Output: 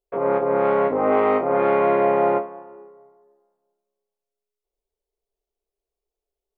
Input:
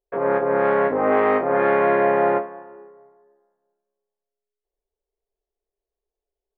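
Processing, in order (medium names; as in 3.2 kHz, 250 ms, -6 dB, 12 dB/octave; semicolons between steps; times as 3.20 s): peaking EQ 1.7 kHz -13 dB 0.23 oct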